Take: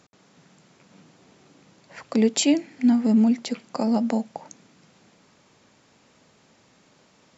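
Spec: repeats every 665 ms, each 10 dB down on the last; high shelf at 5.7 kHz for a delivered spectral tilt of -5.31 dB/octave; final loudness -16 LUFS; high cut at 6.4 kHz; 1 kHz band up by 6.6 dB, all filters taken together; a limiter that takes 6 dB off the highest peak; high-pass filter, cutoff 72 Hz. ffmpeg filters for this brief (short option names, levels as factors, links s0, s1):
-af "highpass=72,lowpass=6400,equalizer=f=1000:t=o:g=9,highshelf=f=5700:g=-6.5,alimiter=limit=0.211:level=0:latency=1,aecho=1:1:665|1330|1995|2660:0.316|0.101|0.0324|0.0104,volume=2.51"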